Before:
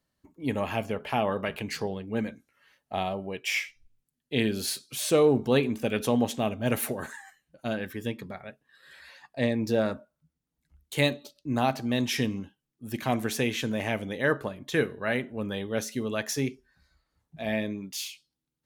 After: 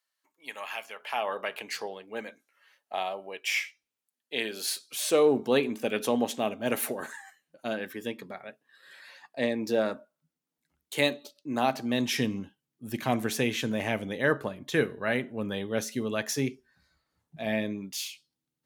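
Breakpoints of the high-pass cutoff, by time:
0.92 s 1.2 kHz
1.39 s 530 Hz
4.84 s 530 Hz
5.33 s 250 Hz
11.53 s 250 Hz
12.40 s 98 Hz

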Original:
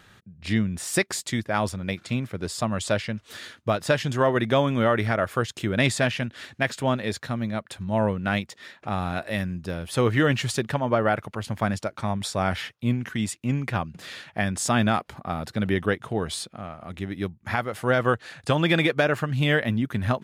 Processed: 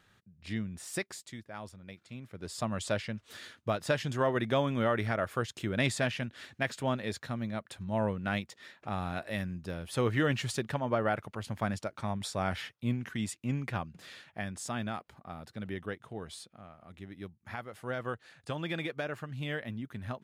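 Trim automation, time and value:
0.98 s -12 dB
1.41 s -19 dB
2.12 s -19 dB
2.60 s -7.5 dB
13.64 s -7.5 dB
14.82 s -14.5 dB

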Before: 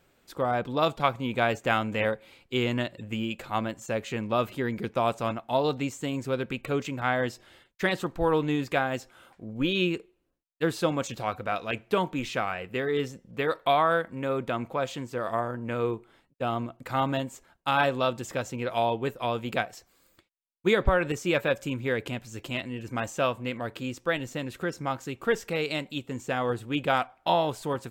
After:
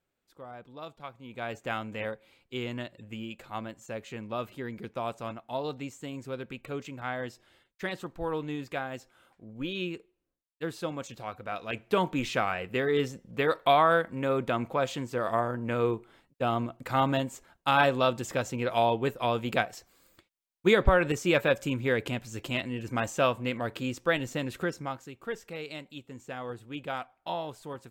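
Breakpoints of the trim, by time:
1.15 s -18 dB
1.58 s -8 dB
11.36 s -8 dB
12.08 s +1 dB
24.61 s +1 dB
25.12 s -10 dB

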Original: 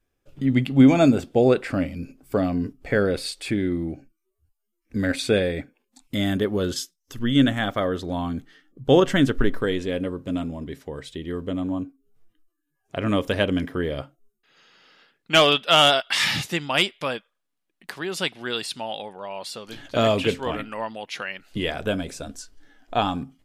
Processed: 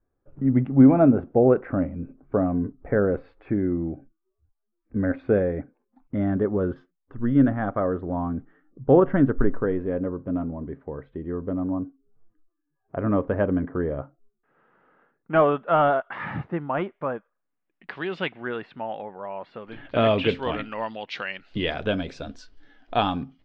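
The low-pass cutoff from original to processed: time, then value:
low-pass 24 dB/octave
17.16 s 1.4 kHz
18.03 s 3.4 kHz
18.48 s 1.9 kHz
19.45 s 1.9 kHz
20.49 s 4.4 kHz

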